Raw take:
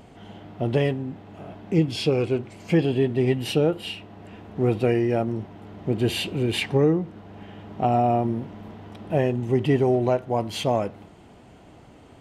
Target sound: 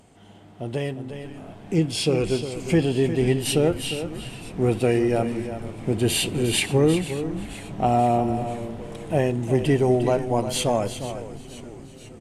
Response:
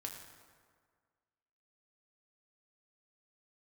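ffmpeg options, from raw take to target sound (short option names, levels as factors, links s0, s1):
-filter_complex "[0:a]asplit=2[s0][s1];[s1]aecho=0:1:355:0.299[s2];[s0][s2]amix=inputs=2:normalize=0,dynaudnorm=f=310:g=9:m=3.76,equalizer=f=9000:w=0.95:g=14,asplit=8[s3][s4][s5][s6][s7][s8][s9][s10];[s4]adelay=484,afreqshift=-130,volume=0.168[s11];[s5]adelay=968,afreqshift=-260,volume=0.11[s12];[s6]adelay=1452,afreqshift=-390,volume=0.0708[s13];[s7]adelay=1936,afreqshift=-520,volume=0.0462[s14];[s8]adelay=2420,afreqshift=-650,volume=0.0299[s15];[s9]adelay=2904,afreqshift=-780,volume=0.0195[s16];[s10]adelay=3388,afreqshift=-910,volume=0.0126[s17];[s3][s11][s12][s13][s14][s15][s16][s17]amix=inputs=8:normalize=0,asplit=2[s18][s19];[1:a]atrim=start_sample=2205[s20];[s19][s20]afir=irnorm=-1:irlink=0,volume=0.15[s21];[s18][s21]amix=inputs=2:normalize=0,volume=0.422"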